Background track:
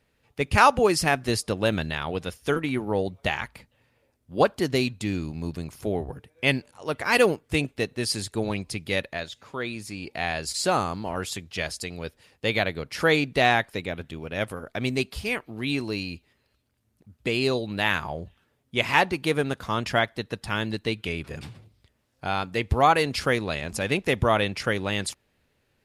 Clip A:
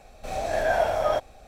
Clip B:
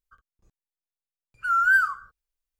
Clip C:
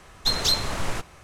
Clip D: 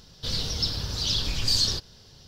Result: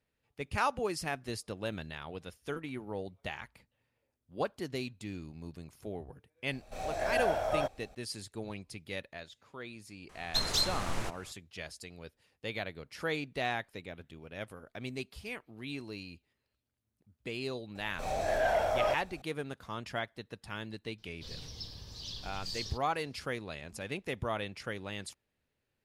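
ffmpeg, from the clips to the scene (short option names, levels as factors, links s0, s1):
-filter_complex "[1:a]asplit=2[s0][s1];[0:a]volume=0.211[s2];[s1]aeval=exprs='0.299*sin(PI/2*1.58*val(0)/0.299)':c=same[s3];[4:a]bandreject=f=1400:w=5.4[s4];[s0]atrim=end=1.47,asetpts=PTS-STARTPTS,volume=0.422,afade=t=in:d=0.004:c=hsin,afade=t=out:st=1.466:d=0.004:c=hsin,adelay=6480[s5];[3:a]atrim=end=1.23,asetpts=PTS-STARTPTS,volume=0.422,afade=t=in:d=0.004:c=hsin,afade=t=out:st=1.226:d=0.004:c=hsin,adelay=10090[s6];[s3]atrim=end=1.47,asetpts=PTS-STARTPTS,volume=0.251,afade=t=in:d=0.004:c=hsin,afade=t=out:st=1.466:d=0.004:c=hsin,adelay=17750[s7];[s4]atrim=end=2.27,asetpts=PTS-STARTPTS,volume=0.141,afade=t=in:d=0.004:c=hsin,afade=t=out:st=2.266:d=0.004:c=hsin,adelay=20980[s8];[s2][s5][s6][s7][s8]amix=inputs=5:normalize=0"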